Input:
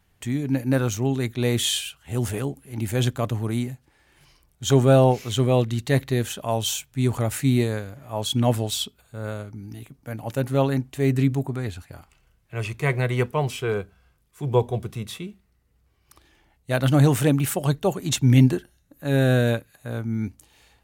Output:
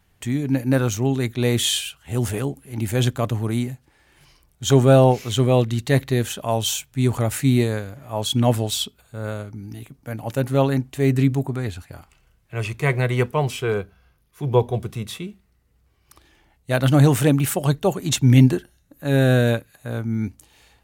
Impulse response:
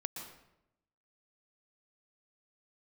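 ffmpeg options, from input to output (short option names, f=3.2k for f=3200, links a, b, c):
-filter_complex "[0:a]asettb=1/sr,asplit=3[a][b][c];[a]atrim=end=13.804[d];[b]atrim=start=13.8:end=14.74,asetpts=PTS-STARTPTS,afade=t=in:d=0.004:c=qsin,afade=t=out:st=0.936:d=0.004:c=qsin,equalizer=f=7.8k:w=5.7:g=-13[e];[c]atrim=start=14.736[f];[d][e]acrossfade=d=0.004:c1=hsin:c2=qsin[g];[g][f]acrossfade=d=0.004:c1=qsin:c2=hsin,volume=2.5dB"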